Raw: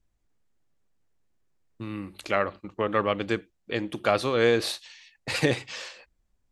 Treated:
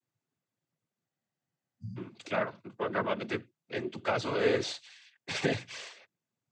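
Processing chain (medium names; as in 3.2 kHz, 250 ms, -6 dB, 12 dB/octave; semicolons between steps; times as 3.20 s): noise-vocoded speech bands 16; spectral replace 1.12–1.94 s, 240–4600 Hz before; trim -5.5 dB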